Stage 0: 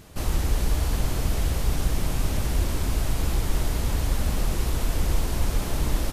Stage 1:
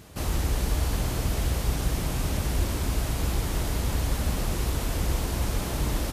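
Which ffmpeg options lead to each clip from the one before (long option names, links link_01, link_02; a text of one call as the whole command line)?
ffmpeg -i in.wav -af "highpass=42" out.wav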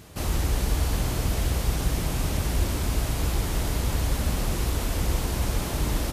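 ffmpeg -i in.wav -af "bandreject=frequency=67.42:width_type=h:width=4,bandreject=frequency=134.84:width_type=h:width=4,bandreject=frequency=202.26:width_type=h:width=4,bandreject=frequency=269.68:width_type=h:width=4,bandreject=frequency=337.1:width_type=h:width=4,bandreject=frequency=404.52:width_type=h:width=4,bandreject=frequency=471.94:width_type=h:width=4,bandreject=frequency=539.36:width_type=h:width=4,bandreject=frequency=606.78:width_type=h:width=4,bandreject=frequency=674.2:width_type=h:width=4,bandreject=frequency=741.62:width_type=h:width=4,bandreject=frequency=809.04:width_type=h:width=4,bandreject=frequency=876.46:width_type=h:width=4,bandreject=frequency=943.88:width_type=h:width=4,bandreject=frequency=1011.3:width_type=h:width=4,bandreject=frequency=1078.72:width_type=h:width=4,bandreject=frequency=1146.14:width_type=h:width=4,bandreject=frequency=1213.56:width_type=h:width=4,bandreject=frequency=1280.98:width_type=h:width=4,bandreject=frequency=1348.4:width_type=h:width=4,bandreject=frequency=1415.82:width_type=h:width=4,bandreject=frequency=1483.24:width_type=h:width=4,bandreject=frequency=1550.66:width_type=h:width=4,bandreject=frequency=1618.08:width_type=h:width=4,bandreject=frequency=1685.5:width_type=h:width=4,bandreject=frequency=1752.92:width_type=h:width=4,bandreject=frequency=1820.34:width_type=h:width=4,bandreject=frequency=1887.76:width_type=h:width=4,volume=1.5dB" out.wav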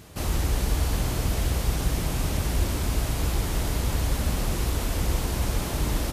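ffmpeg -i in.wav -af anull out.wav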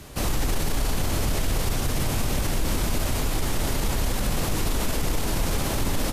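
ffmpeg -i in.wav -af "afreqshift=-32,alimiter=limit=-20.5dB:level=0:latency=1:release=24,volume=5dB" out.wav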